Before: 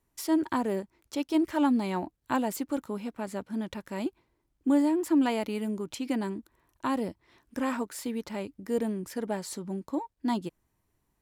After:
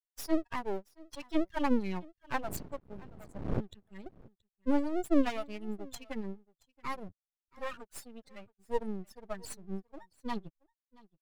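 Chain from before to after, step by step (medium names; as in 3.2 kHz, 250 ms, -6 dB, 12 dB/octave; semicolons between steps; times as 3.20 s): expander on every frequency bin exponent 3; 2.42–3.59 s: wind noise 240 Hz -45 dBFS; half-wave rectifier; delay 676 ms -24 dB; trim +5 dB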